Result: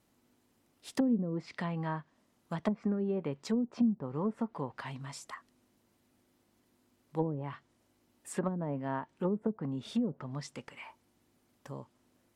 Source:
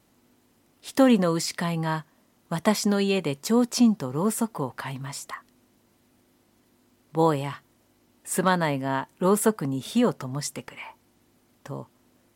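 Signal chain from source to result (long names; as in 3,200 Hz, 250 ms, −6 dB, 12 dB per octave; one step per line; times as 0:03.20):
gain on a spectral selection 0:02.76–0:02.99, 1,100–2,900 Hz +10 dB
treble cut that deepens with the level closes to 310 Hz, closed at −17 dBFS
level −8 dB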